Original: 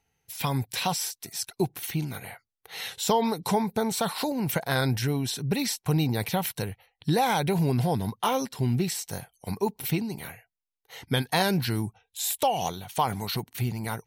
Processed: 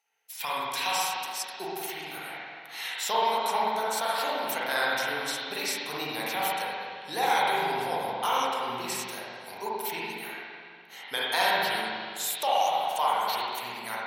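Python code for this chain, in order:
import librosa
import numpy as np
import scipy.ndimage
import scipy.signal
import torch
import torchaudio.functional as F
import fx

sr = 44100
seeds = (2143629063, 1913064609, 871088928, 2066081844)

y = fx.block_float(x, sr, bits=7, at=(2.1, 2.84))
y = scipy.signal.sosfilt(scipy.signal.butter(2, 760.0, 'highpass', fs=sr, output='sos'), y)
y = fx.rev_spring(y, sr, rt60_s=2.2, pass_ms=(41, 59), chirp_ms=65, drr_db=-7.0)
y = y * librosa.db_to_amplitude(-2.5)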